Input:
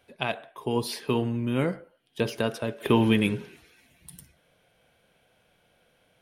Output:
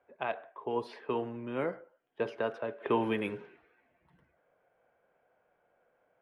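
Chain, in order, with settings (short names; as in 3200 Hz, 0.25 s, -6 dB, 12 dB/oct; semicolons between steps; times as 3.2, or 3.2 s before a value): low-pass opened by the level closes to 1700 Hz, open at -18.5 dBFS; three-band isolator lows -15 dB, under 350 Hz, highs -17 dB, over 2100 Hz; gain -2.5 dB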